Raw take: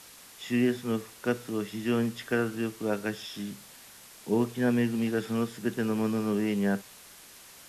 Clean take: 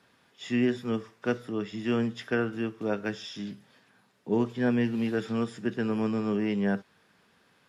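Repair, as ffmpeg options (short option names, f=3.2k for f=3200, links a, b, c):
-af "afwtdn=0.0035"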